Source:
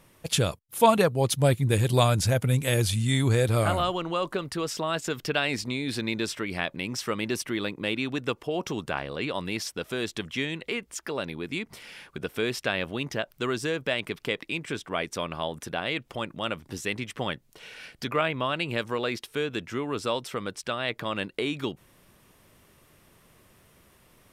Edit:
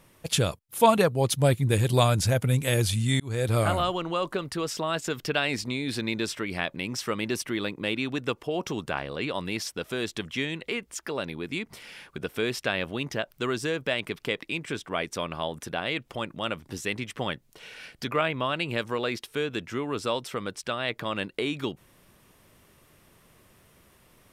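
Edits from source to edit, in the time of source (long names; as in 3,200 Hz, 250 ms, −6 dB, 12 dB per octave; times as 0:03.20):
0:03.20–0:03.53: fade in linear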